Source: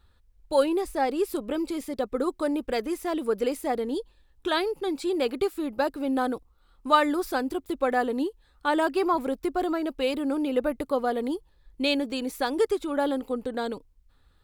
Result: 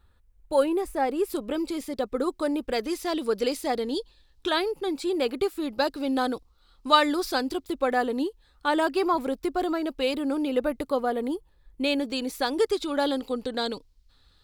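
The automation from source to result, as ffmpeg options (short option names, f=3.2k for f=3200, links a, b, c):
-af "asetnsamples=n=441:p=0,asendcmd='1.3 equalizer g 3.5;2.82 equalizer g 11;4.49 equalizer g 2;5.62 equalizer g 10.5;7.68 equalizer g 4;11 equalizer g -3;11.98 equalizer g 5;12.73 equalizer g 13',equalizer=f=4.5k:t=o:w=1.2:g=-5"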